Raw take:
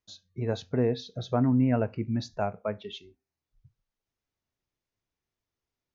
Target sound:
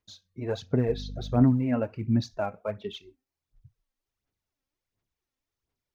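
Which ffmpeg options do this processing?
-filter_complex "[0:a]aphaser=in_gain=1:out_gain=1:delay=3.8:decay=0.58:speed=1.4:type=sinusoidal,asettb=1/sr,asplit=3[s0][s1][s2];[s0]atrim=end=0.884[s3];[s1]atrim=start=0.88:end=1.44,asetpts=PTS-STARTPTS,afade=t=in:d=0.004:c=qsin,afade=t=out:st=0.556:d=0.004:c=qsin,aeval=exprs='val(0)+0.02*(sin(2*PI*50*n/s)+sin(2*PI*2*50*n/s)/2+sin(2*PI*3*50*n/s)/3+sin(2*PI*4*50*n/s)/4+sin(2*PI*5*50*n/s)/5)':c=same[s4];[s2]atrim=start=1.436[s5];[s3][s4]acrossfade=d=0.004:c1=hsin:c2=qsin[s6];[s6][s5]acrossfade=d=0.004:c1=qsin:c2=hsin,volume=0.794"

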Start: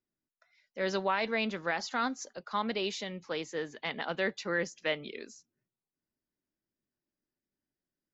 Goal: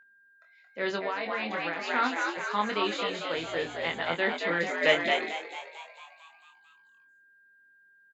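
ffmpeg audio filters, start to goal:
-filter_complex "[0:a]equalizer=f=1900:w=0.59:g=3.5,asplit=9[s0][s1][s2][s3][s4][s5][s6][s7][s8];[s1]adelay=224,afreqshift=85,volume=0.631[s9];[s2]adelay=448,afreqshift=170,volume=0.372[s10];[s3]adelay=672,afreqshift=255,volume=0.219[s11];[s4]adelay=896,afreqshift=340,volume=0.13[s12];[s5]adelay=1120,afreqshift=425,volume=0.0767[s13];[s6]adelay=1344,afreqshift=510,volume=0.0452[s14];[s7]adelay=1568,afreqshift=595,volume=0.0266[s15];[s8]adelay=1792,afreqshift=680,volume=0.0157[s16];[s0][s9][s10][s11][s12][s13][s14][s15][s16]amix=inputs=9:normalize=0,asettb=1/sr,asplit=3[s17][s18][s19];[s17]atrim=end=3.374[s20];[s18]atrim=start=3.37:end=4.13,asetpts=PTS-STARTPTS,afade=t=in:d=0.004:c=qsin,afade=t=out:st=0.756:d=0.004:c=qsin,aeval=exprs='val(0)+0.00316*(sin(2*PI*60*n/s)+sin(2*PI*2*60*n/s)/2+sin(2*PI*3*60*n/s)/3+sin(2*PI*4*60*n/s)/4+sin(2*PI*5*60*n/s)/5)':c=same[s21];[s19]atrim=start=4.126[s22];[s20][s21]acrossfade=d=0.004:c1=hsin:c2=qsin[s23];[s23][s22]acrossfade=d=0.004:c1=qsin:c2=hsin,equalizer=f=5600:w=3.9:g=-14,asettb=1/sr,asplit=3[s24][s25][s26];[s24]atrim=end=4.814[s27];[s25]atrim=start=4.81:end=5.29,asetpts=PTS-STARTPTS,afade=t=in:d=0.004:c=qsin,afade=t=out:st=0.476:d=0.004:c=qsin,acontrast=27[s28];[s26]atrim=start=5.286[s29];[s27][s28]acrossfade=d=0.004:c1=hsin:c2=qsin[s30];[s30][s29]acrossfade=d=0.004:c1=qsin:c2=hsin,aeval=exprs='val(0)+0.00178*sin(2*PI*1600*n/s)':c=same,asettb=1/sr,asplit=3[s31][s32][s33];[s31]atrim=end=0.954[s34];[s32]atrim=start=0.95:end=1.88,asetpts=PTS-STARTPTS,afade=t=in:d=0.004:c=qsin,afade=t=out:st=0.926:d=0.004:c=qsin,acompressor=threshold=0.0355:ratio=10[s35];[s33]atrim=start=1.876[s36];[s34][s35]acrossfade=d=0.004:c1=hsin:c2=qsin[s37];[s37][s36]acrossfade=d=0.004:c1=qsin:c2=hsin,highpass=72,asplit=2[s38][s39];[s39]adelay=24,volume=0.596[s40];[s38][s40]amix=inputs=2:normalize=0"

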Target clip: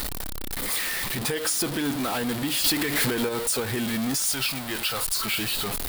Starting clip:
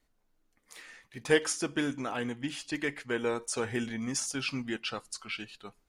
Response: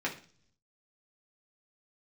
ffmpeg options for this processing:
-filter_complex "[0:a]aeval=exprs='val(0)+0.5*0.0422*sgn(val(0))':c=same,asettb=1/sr,asplit=3[s0][s1][s2];[s0]atrim=end=2.644[s3];[s1]atrim=start=2.64:end=3.29,asetpts=PTS-STARTPTS,afade=t=in:d=0.004:c=qsin,afade=t=out:st=0.646:d=0.004:c=qsin,acontrast=51[s4];[s2]atrim=start=3.286[s5];[s3][s4]acrossfade=d=0.004:c1=hsin:c2=qsin[s6];[s6][s5]acrossfade=d=0.004:c1=qsin:c2=hsin,asettb=1/sr,asplit=3[s7][s8][s9];[s7]atrim=end=4.254[s10];[s8]atrim=start=4.25:end=5.17,asetpts=PTS-STARTPTS,afade=t=in:d=0.004:c=qsin,afade=t=out:st=0.916:d=0.004:c=qsin,equalizer=f=240:w=0.95:g=-9[s11];[s9]atrim=start=5.166[s12];[s10][s11]acrossfade=d=0.004:c1=hsin:c2=qsin[s13];[s13][s12]acrossfade=d=0.004:c1=qsin:c2=hsin,alimiter=limit=0.0794:level=0:latency=1:release=100,aexciter=amount=1.6:drive=4:freq=3500,volume=1.26"

